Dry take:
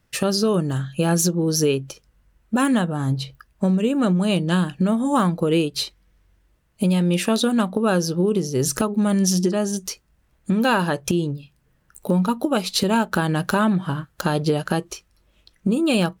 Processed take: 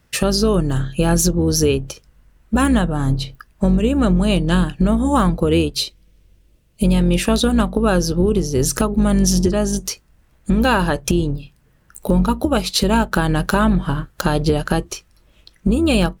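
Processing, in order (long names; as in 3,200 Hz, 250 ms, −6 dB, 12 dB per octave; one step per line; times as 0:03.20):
sub-octave generator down 2 octaves, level −4 dB
0:05.75–0:06.85: flat-topped bell 1,200 Hz −8.5 dB
in parallel at −1 dB: downward compressor, threshold −28 dBFS, peak gain reduction 13.5 dB
on the sum: level +1 dB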